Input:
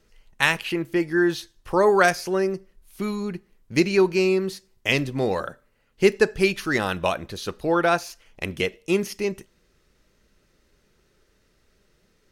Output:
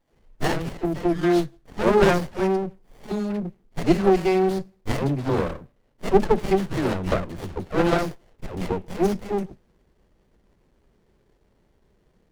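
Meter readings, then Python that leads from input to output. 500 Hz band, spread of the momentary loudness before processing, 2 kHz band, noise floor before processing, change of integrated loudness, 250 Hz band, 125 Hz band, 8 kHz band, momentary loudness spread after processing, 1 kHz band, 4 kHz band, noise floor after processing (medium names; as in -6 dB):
0.0 dB, 14 LU, -7.5 dB, -65 dBFS, -0.5 dB, +1.5 dB, +4.5 dB, -5.5 dB, 14 LU, 0.0 dB, -6.0 dB, -65 dBFS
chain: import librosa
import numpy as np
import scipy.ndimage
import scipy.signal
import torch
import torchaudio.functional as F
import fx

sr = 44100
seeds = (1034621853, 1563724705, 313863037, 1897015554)

y = fx.dispersion(x, sr, late='lows', ms=131.0, hz=680.0)
y = fx.running_max(y, sr, window=33)
y = y * 10.0 ** (2.5 / 20.0)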